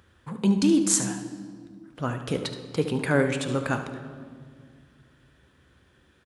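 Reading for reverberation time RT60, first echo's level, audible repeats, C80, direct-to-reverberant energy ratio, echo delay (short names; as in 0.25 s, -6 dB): 1.9 s, -11.5 dB, 1, 10.5 dB, 6.5 dB, 73 ms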